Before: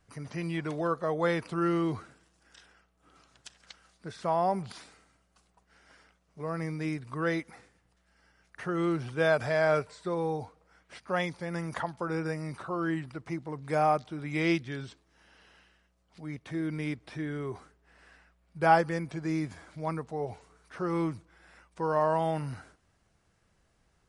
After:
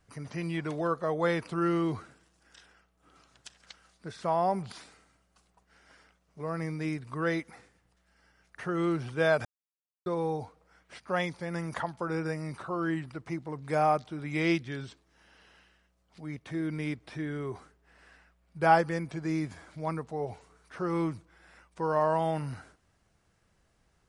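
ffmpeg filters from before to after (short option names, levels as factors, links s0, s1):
-filter_complex "[0:a]asplit=3[s0][s1][s2];[s0]atrim=end=9.45,asetpts=PTS-STARTPTS,afade=t=out:st=9.446:d=0.004:c=hsin[s3];[s1]atrim=start=9.45:end=10.06,asetpts=PTS-STARTPTS,volume=0[s4];[s2]atrim=start=10.06,asetpts=PTS-STARTPTS,afade=t=in:d=0.004:c=hsin[s5];[s3][s4][s5]concat=n=3:v=0:a=1"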